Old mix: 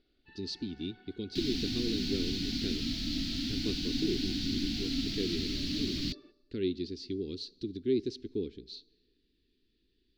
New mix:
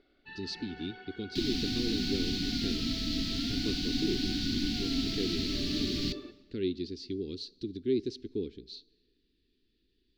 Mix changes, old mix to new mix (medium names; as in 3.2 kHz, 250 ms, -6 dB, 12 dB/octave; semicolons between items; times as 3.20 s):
first sound +11.5 dB; second sound: send on